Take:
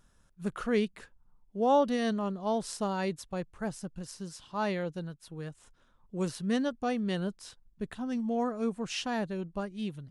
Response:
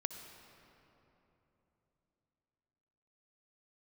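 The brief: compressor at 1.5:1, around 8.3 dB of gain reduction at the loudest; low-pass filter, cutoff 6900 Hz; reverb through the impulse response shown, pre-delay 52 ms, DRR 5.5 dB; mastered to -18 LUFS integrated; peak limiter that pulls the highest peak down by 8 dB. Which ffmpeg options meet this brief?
-filter_complex "[0:a]lowpass=6.9k,acompressor=threshold=-44dB:ratio=1.5,alimiter=level_in=8.5dB:limit=-24dB:level=0:latency=1,volume=-8.5dB,asplit=2[a][b];[1:a]atrim=start_sample=2205,adelay=52[c];[b][c]afir=irnorm=-1:irlink=0,volume=-5dB[d];[a][d]amix=inputs=2:normalize=0,volume=22.5dB"

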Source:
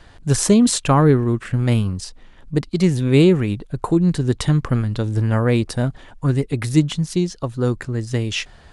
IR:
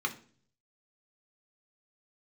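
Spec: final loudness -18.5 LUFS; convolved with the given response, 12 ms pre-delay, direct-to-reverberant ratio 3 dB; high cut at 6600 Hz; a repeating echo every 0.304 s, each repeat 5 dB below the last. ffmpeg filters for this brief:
-filter_complex "[0:a]lowpass=6.6k,aecho=1:1:304|608|912|1216|1520|1824|2128:0.562|0.315|0.176|0.0988|0.0553|0.031|0.0173,asplit=2[a][b];[1:a]atrim=start_sample=2205,adelay=12[c];[b][c]afir=irnorm=-1:irlink=0,volume=-9dB[d];[a][d]amix=inputs=2:normalize=0,volume=-2dB"

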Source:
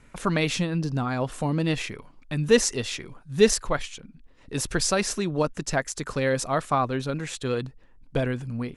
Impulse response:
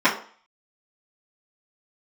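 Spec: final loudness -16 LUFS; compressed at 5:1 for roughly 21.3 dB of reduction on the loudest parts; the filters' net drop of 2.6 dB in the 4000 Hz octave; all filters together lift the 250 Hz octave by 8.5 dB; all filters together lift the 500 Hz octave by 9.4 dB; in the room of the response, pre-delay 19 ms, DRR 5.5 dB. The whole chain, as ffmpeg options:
-filter_complex "[0:a]equalizer=f=250:t=o:g=8.5,equalizer=f=500:t=o:g=8.5,equalizer=f=4k:t=o:g=-3.5,acompressor=threshold=-28dB:ratio=5,asplit=2[a][b];[1:a]atrim=start_sample=2205,adelay=19[c];[b][c]afir=irnorm=-1:irlink=0,volume=-26dB[d];[a][d]amix=inputs=2:normalize=0,volume=15.5dB"

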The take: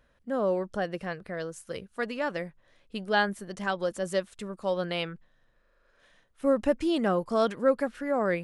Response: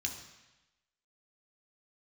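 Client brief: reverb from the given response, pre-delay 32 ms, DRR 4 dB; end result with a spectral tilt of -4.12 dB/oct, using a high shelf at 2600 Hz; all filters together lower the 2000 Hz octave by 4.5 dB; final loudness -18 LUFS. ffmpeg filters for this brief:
-filter_complex "[0:a]equalizer=f=2k:t=o:g=-7.5,highshelf=f=2.6k:g=3.5,asplit=2[a][b];[1:a]atrim=start_sample=2205,adelay=32[c];[b][c]afir=irnorm=-1:irlink=0,volume=-5.5dB[d];[a][d]amix=inputs=2:normalize=0,volume=11dB"

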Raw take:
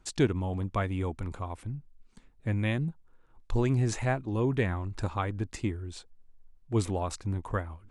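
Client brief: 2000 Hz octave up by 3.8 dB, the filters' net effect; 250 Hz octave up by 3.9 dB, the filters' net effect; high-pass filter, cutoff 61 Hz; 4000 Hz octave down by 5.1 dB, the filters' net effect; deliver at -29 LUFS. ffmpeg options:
-af "highpass=61,equalizer=f=250:t=o:g=5,equalizer=f=2k:t=o:g=6.5,equalizer=f=4k:t=o:g=-9,volume=0.5dB"

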